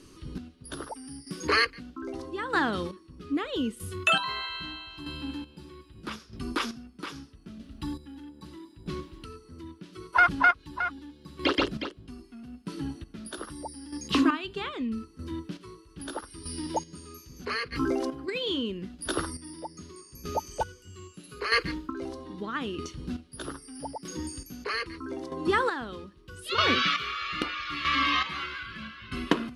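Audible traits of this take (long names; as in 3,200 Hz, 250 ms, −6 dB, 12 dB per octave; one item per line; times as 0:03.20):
chopped level 0.79 Hz, depth 65%, duty 30%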